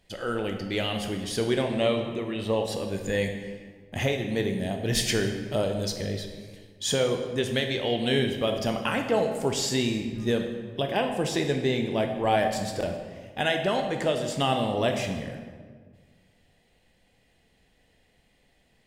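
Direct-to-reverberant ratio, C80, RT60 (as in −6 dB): 4.0 dB, 8.0 dB, 1.6 s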